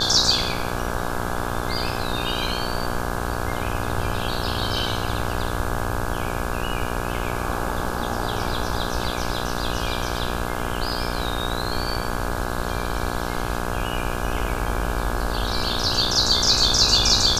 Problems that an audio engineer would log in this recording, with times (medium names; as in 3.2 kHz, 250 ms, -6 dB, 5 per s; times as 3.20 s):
buzz 60 Hz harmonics 28 -28 dBFS